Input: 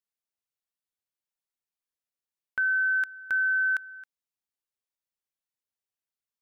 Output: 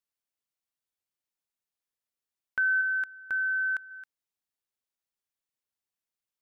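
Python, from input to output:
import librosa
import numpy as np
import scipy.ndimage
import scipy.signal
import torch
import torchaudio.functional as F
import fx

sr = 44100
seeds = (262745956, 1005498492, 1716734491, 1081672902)

y = fx.high_shelf(x, sr, hz=2000.0, db=-9.0, at=(2.81, 3.91))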